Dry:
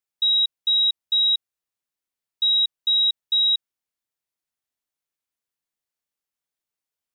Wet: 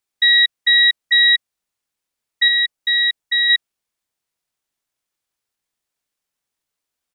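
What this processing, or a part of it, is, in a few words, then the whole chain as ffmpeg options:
octave pedal: -filter_complex "[0:a]asettb=1/sr,asplit=3[link_01][link_02][link_03];[link_01]atrim=end=2.484[link_04];[link_02]atrim=start=2.48:end=3.5,asetpts=PTS-STARTPTS,afade=type=in:duration=0.004:curve=qsin,afade=type=out:start_time=1.016:duration=0.004:curve=qsin,equalizer=frequency=3600:width_type=o:width=0.56:gain=-4.5[link_05];[link_03]atrim=start=3.496[link_06];[link_04][link_05]acrossfade=duration=0.004:curve1=hsin:curve2=qsin[link_07];[link_07][link_06]acrossfade=duration=0.004:curve1=qsin:curve2=hsin,asplit=2[link_08][link_09];[link_09]asetrate=22050,aresample=44100,atempo=2,volume=-2dB[link_10];[link_08][link_10]amix=inputs=2:normalize=0,volume=4.5dB"

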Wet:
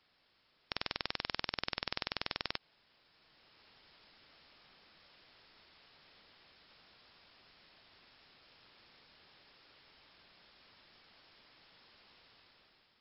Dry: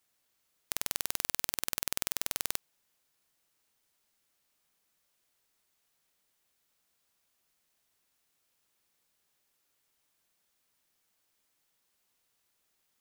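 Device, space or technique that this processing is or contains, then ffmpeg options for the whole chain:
low-bitrate web radio: -af "dynaudnorm=framelen=320:gausssize=5:maxgain=10dB,alimiter=limit=-11dB:level=0:latency=1:release=95,volume=9.5dB" -ar 12000 -c:a libmp3lame -b:a 48k

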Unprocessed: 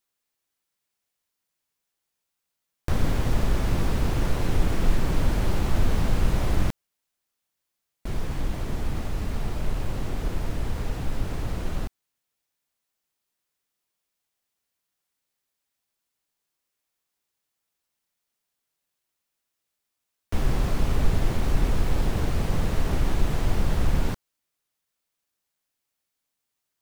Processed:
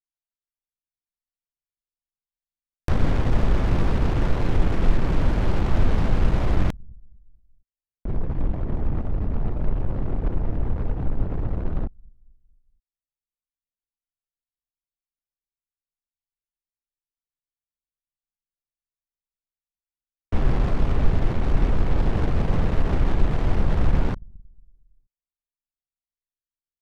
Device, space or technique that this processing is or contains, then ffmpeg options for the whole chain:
voice memo with heavy noise removal: -af "aecho=1:1:230|460|690|920:0.1|0.051|0.026|0.0133,anlmdn=10,dynaudnorm=framelen=210:gausssize=5:maxgain=7dB,volume=-3dB"

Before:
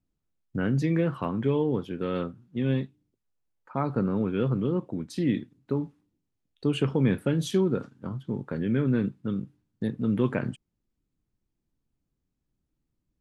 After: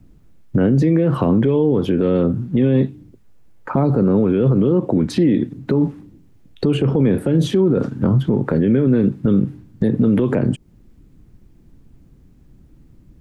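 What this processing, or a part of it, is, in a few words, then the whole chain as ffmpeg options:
mastering chain: -filter_complex "[0:a]equalizer=frequency=1900:width_type=o:width=1.1:gain=4,acrossover=split=350|770|3500[link_01][link_02][link_03][link_04];[link_01]acompressor=threshold=-39dB:ratio=4[link_05];[link_02]acompressor=threshold=-33dB:ratio=4[link_06];[link_03]acompressor=threshold=-50dB:ratio=4[link_07];[link_04]acompressor=threshold=-56dB:ratio=4[link_08];[link_05][link_06][link_07][link_08]amix=inputs=4:normalize=0,acompressor=threshold=-38dB:ratio=2,tiltshelf=frequency=690:gain=7,alimiter=level_in=32.5dB:limit=-1dB:release=50:level=0:latency=1,volume=-7dB"

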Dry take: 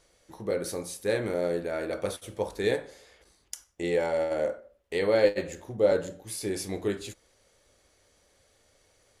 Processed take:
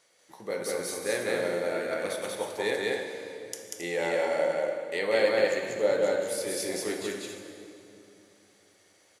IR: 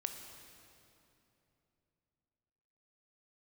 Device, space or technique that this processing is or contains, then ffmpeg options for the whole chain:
stadium PA: -filter_complex "[0:a]highpass=250,equalizer=frequency=360:width_type=o:width=1.4:gain=-5.5,equalizer=frequency=2000:width_type=o:width=0.27:gain=3.5,aecho=1:1:189.5|271.1:0.891|0.316[link_01];[1:a]atrim=start_sample=2205[link_02];[link_01][link_02]afir=irnorm=-1:irlink=0,volume=1.5dB"

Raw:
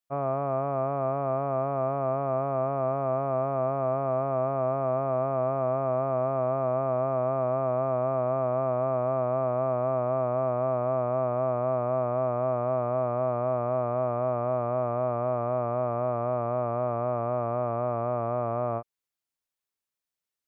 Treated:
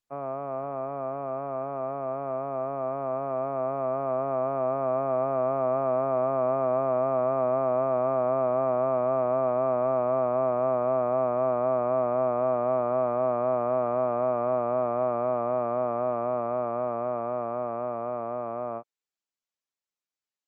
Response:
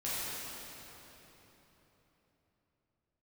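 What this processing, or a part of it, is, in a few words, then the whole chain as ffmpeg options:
video call: -af "highpass=frequency=160:width=0.5412,highpass=frequency=160:width=1.3066,dynaudnorm=framelen=480:gausssize=17:maxgain=6dB,volume=-4dB" -ar 48000 -c:a libopus -b:a 20k

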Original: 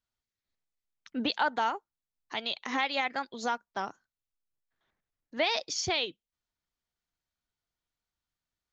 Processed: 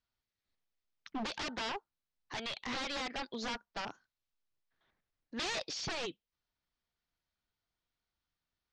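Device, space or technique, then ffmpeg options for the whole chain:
synthesiser wavefolder: -filter_complex "[0:a]aeval=exprs='0.0224*(abs(mod(val(0)/0.0224+3,4)-2)-1)':channel_layout=same,lowpass=frequency=5600:width=0.5412,lowpass=frequency=5600:width=1.3066,asettb=1/sr,asplit=3[link_01][link_02][link_03];[link_01]atrim=end=3.854[link_04];[link_02]atrim=start=3.85:end=5.64,asetpts=PTS-STARTPTS,afade=type=in:duration=0.004:curve=qsin,afade=type=out:start_time=1.786:duration=0.004:curve=qsin,adynamicequalizer=threshold=0.00282:dfrequency=1700:dqfactor=0.7:tfrequency=1700:tqfactor=0.7:attack=5:release=100:ratio=0.375:range=2:mode=boostabove:tftype=highshelf[link_05];[link_03]atrim=start=5.636[link_06];[link_04][link_05]acrossfade=duration=0.004:curve1=hsin:curve2=qsin[link_07];[link_07][link_06]acrossfade=duration=0.004:curve1=qsin:curve2=hsin,volume=1dB"

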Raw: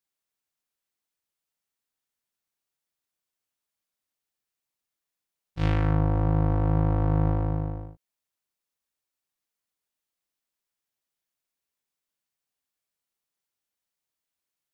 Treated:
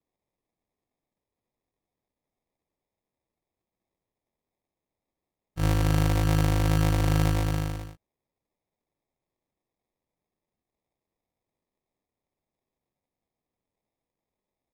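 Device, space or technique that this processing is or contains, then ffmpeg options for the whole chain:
crushed at another speed: -af "asetrate=55125,aresample=44100,acrusher=samples=24:mix=1:aa=0.000001,asetrate=35280,aresample=44100"

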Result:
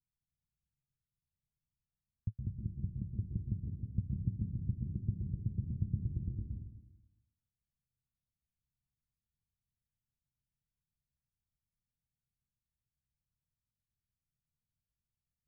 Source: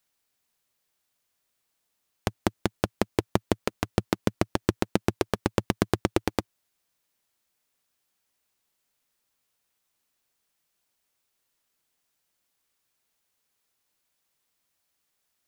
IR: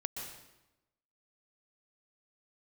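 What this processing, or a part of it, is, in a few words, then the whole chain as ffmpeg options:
club heard from the street: -filter_complex "[0:a]alimiter=limit=-12dB:level=0:latency=1,lowpass=frequency=150:width=0.5412,lowpass=frequency=150:width=1.3066[link_01];[1:a]atrim=start_sample=2205[link_02];[link_01][link_02]afir=irnorm=-1:irlink=0,volume=4.5dB"

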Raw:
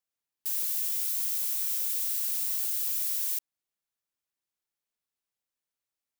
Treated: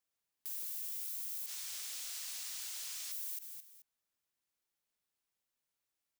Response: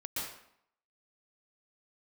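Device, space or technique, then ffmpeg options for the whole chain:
de-esser from a sidechain: -filter_complex "[0:a]asettb=1/sr,asplit=3[link_01][link_02][link_03];[link_01]atrim=end=1.464[link_04];[link_02]atrim=start=1.46:end=3.12,asetpts=PTS-STARTPTS,afade=type=in:duration=0.004:curve=qsin,afade=type=out:start_time=1.656:duration=0.004:curve=qsin,acrossover=split=7700[link_05][link_06];[link_06]acompressor=threshold=-45dB:ratio=4:attack=1:release=60[link_07];[link_05][link_07]amix=inputs=2:normalize=0[link_08];[link_03]atrim=start=3.116[link_09];[link_04][link_08]acrossfade=duration=0.004:curve1=hsin:curve2=qsin[link_10];[link_10][link_09]acrossfade=duration=0.004:curve1=qsin:curve2=hsin,aecho=1:1:216|432:0.112|0.0314,asplit=2[link_11][link_12];[link_12]highpass=frequency=5800:width=0.5412,highpass=frequency=5800:width=1.3066,apad=whole_len=292354[link_13];[link_11][link_13]sidechaincompress=threshold=-40dB:ratio=4:attack=0.71:release=41,volume=1dB"

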